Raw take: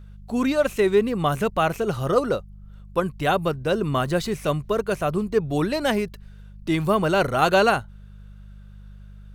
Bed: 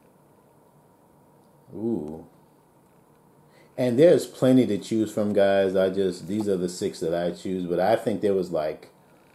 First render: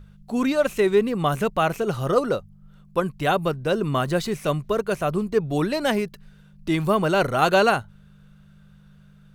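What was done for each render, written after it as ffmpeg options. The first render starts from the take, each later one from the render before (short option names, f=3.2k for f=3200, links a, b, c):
-af "bandreject=f=50:t=h:w=4,bandreject=f=100:t=h:w=4"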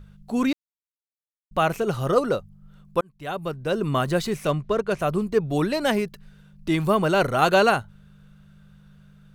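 -filter_complex "[0:a]asplit=3[a][b][c];[a]afade=t=out:st=4.47:d=0.02[d];[b]adynamicsmooth=sensitivity=4.5:basefreq=5.3k,afade=t=in:st=4.47:d=0.02,afade=t=out:st=4.98:d=0.02[e];[c]afade=t=in:st=4.98:d=0.02[f];[d][e][f]amix=inputs=3:normalize=0,asplit=4[g][h][i][j];[g]atrim=end=0.53,asetpts=PTS-STARTPTS,afade=t=out:st=0.526:d=0.004:c=hsin[k];[h]atrim=start=0.53:end=1.51,asetpts=PTS-STARTPTS,volume=0[l];[i]atrim=start=1.51:end=3.01,asetpts=PTS-STARTPTS,afade=t=in:d=0.004:c=hsin,afade=t=out:st=1.496:d=0.004:c=hsin[m];[j]atrim=start=3.01,asetpts=PTS-STARTPTS,afade=t=in:d=0.9[n];[k][l][m][n]concat=n=4:v=0:a=1"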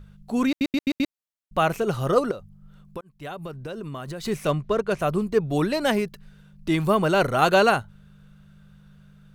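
-filter_complex "[0:a]asettb=1/sr,asplit=3[a][b][c];[a]atrim=end=2.314[d];[b]atrim=start=2.31:end=4.25,asetpts=PTS-STARTPTS,afade=t=in:d=0.004:c=qsin,afade=t=out:st=1.936:d=0.004:c=qsin,acompressor=threshold=-30dB:ratio=12:attack=3.2:release=140:knee=1:detection=peak[e];[c]atrim=start=4.246[f];[d][e]acrossfade=d=0.004:c1=hsin:c2=qsin[g];[g][f]acrossfade=d=0.004:c1=qsin:c2=hsin,asplit=6[h][i][j][k][l][m];[h]atrim=end=0.612[n];[i]atrim=start=0.478:end=0.612[o];[j]atrim=start=0.478:end=0.612[p];[k]atrim=start=0.478:end=0.612[q];[l]atrim=start=0.478:end=0.612[r];[m]atrim=start=1.128[s];[n][o]acrossfade=d=0.004:c1=hsin:c2=hsin[t];[t][p]acrossfade=d=0.004:c1=hsin:c2=hsin[u];[u][q]acrossfade=d=0.004:c1=hsin:c2=hsin[v];[v][r]acrossfade=d=0.004:c1=hsin:c2=hsin[w];[w][s]acrossfade=d=0.004:c1=hsin:c2=hsin"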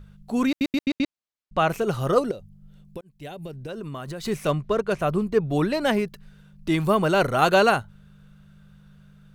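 -filter_complex "[0:a]asettb=1/sr,asplit=3[a][b][c];[a]atrim=end=0.844[d];[b]atrim=start=0.84:end=1.68,asetpts=PTS-STARTPTS,afade=t=in:d=0.004:c=qsin,afade=t=out:st=0.836:d=0.004:c=qsin,lowpass=6.5k[e];[c]atrim=start=1.676[f];[d][e]acrossfade=d=0.004:c1=hsin:c2=qsin[g];[g][f]acrossfade=d=0.004:c1=qsin:c2=hsin,asettb=1/sr,asplit=3[h][i][j];[h]atrim=end=2.224[k];[i]atrim=start=2.22:end=3.69,asetpts=PTS-STARTPTS,afade=t=in:d=0.004:c=qsin,afade=t=out:st=1.466:d=0.004:c=qsin,equalizer=f=1.2k:w=1.8:g=-13[l];[j]atrim=start=3.686[m];[k][l]acrossfade=d=0.004:c1=hsin:c2=qsin[n];[n][m]acrossfade=d=0.004:c1=qsin:c2=hsin,asettb=1/sr,asplit=3[o][p][q];[o]atrim=end=4.974[r];[p]atrim=start=4.97:end=6.06,asetpts=PTS-STARTPTS,afade=t=in:d=0.004:c=qsin,afade=t=out:st=1.086:d=0.004:c=qsin,bass=f=250:g=1,treble=f=4k:g=-4[s];[q]atrim=start=6.056[t];[r][s]acrossfade=d=0.004:c1=hsin:c2=qsin[u];[u][t]acrossfade=d=0.004:c1=qsin:c2=hsin"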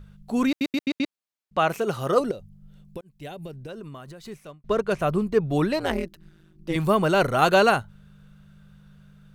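-filter_complex "[0:a]asettb=1/sr,asplit=3[a][b][c];[a]atrim=end=0.574[d];[b]atrim=start=0.57:end=2.2,asetpts=PTS-STARTPTS,afade=t=in:d=0.004:c=qsin,afade=t=out:st=1.626:d=0.004:c=qsin,highpass=f=200:p=1[e];[c]atrim=start=2.196[f];[d][e]acrossfade=d=0.004:c1=hsin:c2=qsin[g];[g][f]acrossfade=d=0.004:c1=qsin:c2=hsin,asettb=1/sr,asplit=3[h][i][j];[h]atrim=end=5.794[k];[i]atrim=start=5.79:end=6.76,asetpts=PTS-STARTPTS,afade=t=in:d=0.004:c=qsin,afade=t=out:st=0.966:d=0.004:c=qsin,tremolo=f=170:d=1[l];[j]atrim=start=6.756[m];[k][l]acrossfade=d=0.004:c1=hsin:c2=qsin[n];[n][m]acrossfade=d=0.004:c1=qsin:c2=hsin,asplit=2[o][p];[o]atrim=end=4.64,asetpts=PTS-STARTPTS,afade=t=out:st=3.29:d=1.35[q];[p]atrim=start=4.64,asetpts=PTS-STARTPTS,afade=t=in:d=0.004:c=hsin[r];[q][r]concat=n=2:v=0:a=1"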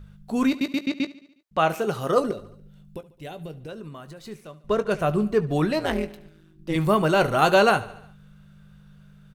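-filter_complex "[0:a]asplit=2[a][b];[b]adelay=19,volume=-11.5dB[c];[a][c]amix=inputs=2:normalize=0,aecho=1:1:72|144|216|288|360:0.119|0.0689|0.04|0.0232|0.0134"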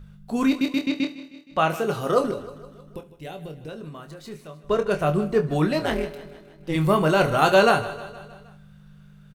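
-filter_complex "[0:a]asplit=2[a][b];[b]adelay=26,volume=-8dB[c];[a][c]amix=inputs=2:normalize=0,aecho=1:1:156|312|468|624|780:0.15|0.0868|0.0503|0.0292|0.0169"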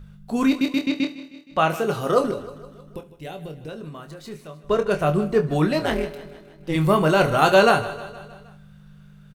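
-af "volume=1.5dB"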